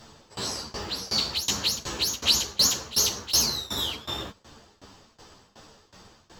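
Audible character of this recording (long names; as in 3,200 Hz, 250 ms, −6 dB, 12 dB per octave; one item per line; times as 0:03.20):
tremolo saw down 2.7 Hz, depth 95%
a shimmering, thickened sound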